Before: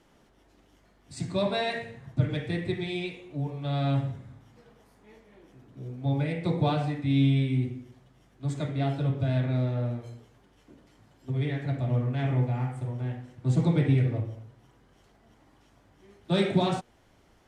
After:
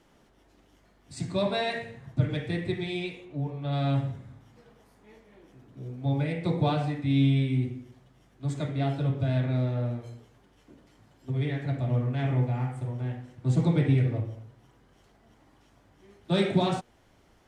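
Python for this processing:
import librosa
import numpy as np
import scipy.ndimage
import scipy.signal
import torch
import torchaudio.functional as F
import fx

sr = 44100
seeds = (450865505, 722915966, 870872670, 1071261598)

y = fx.high_shelf(x, sr, hz=fx.line((3.24, 5700.0), (3.71, 3900.0)), db=-9.0, at=(3.24, 3.71), fade=0.02)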